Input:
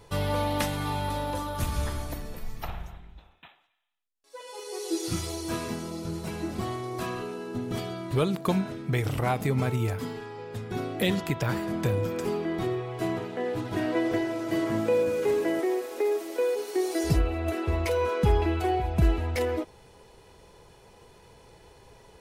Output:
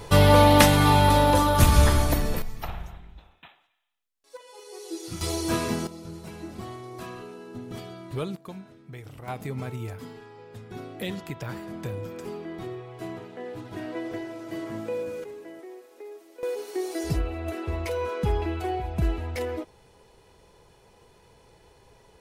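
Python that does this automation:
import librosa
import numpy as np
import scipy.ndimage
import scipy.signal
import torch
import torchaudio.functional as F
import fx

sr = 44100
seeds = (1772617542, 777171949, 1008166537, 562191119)

y = fx.gain(x, sr, db=fx.steps((0.0, 12.0), (2.42, 1.5), (4.37, -6.0), (5.21, 5.5), (5.87, -6.0), (8.36, -15.0), (9.28, -7.0), (15.24, -16.0), (16.43, -3.0)))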